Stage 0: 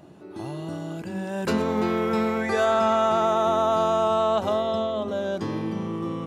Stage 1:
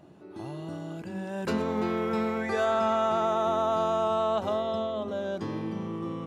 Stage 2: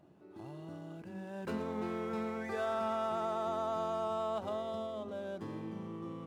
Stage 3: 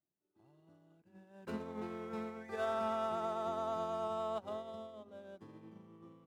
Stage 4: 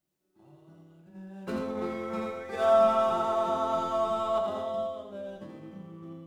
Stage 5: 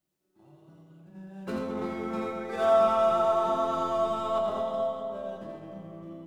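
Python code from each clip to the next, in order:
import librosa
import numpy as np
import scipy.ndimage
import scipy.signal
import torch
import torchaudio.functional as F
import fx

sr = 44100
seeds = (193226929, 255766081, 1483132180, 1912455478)

y1 = fx.high_shelf(x, sr, hz=6000.0, db=-4.5)
y1 = F.gain(torch.from_numpy(y1), -4.5).numpy()
y2 = scipy.signal.medfilt(y1, 9)
y2 = F.gain(torch.from_numpy(y2), -9.0).numpy()
y3 = fx.upward_expand(y2, sr, threshold_db=-56.0, expansion=2.5)
y4 = y3 + 10.0 ** (-4.5 / 20.0) * np.pad(y3, (int(84 * sr / 1000.0), 0))[:len(y3)]
y4 = fx.room_shoebox(y4, sr, seeds[0], volume_m3=160.0, walls='furnished', distance_m=1.0)
y4 = F.gain(torch.from_numpy(y4), 7.0).numpy()
y5 = fx.echo_filtered(y4, sr, ms=220, feedback_pct=64, hz=2200.0, wet_db=-6.5)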